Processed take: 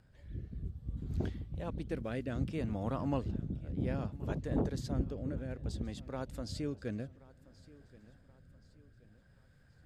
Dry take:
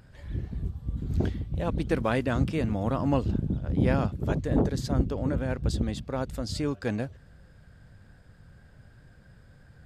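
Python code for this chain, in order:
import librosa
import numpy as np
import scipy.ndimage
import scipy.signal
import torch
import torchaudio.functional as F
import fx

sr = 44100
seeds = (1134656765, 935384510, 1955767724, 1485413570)

y = fx.rotary(x, sr, hz=0.6)
y = fx.echo_feedback(y, sr, ms=1077, feedback_pct=43, wet_db=-21)
y = y * librosa.db_to_amplitude(-8.0)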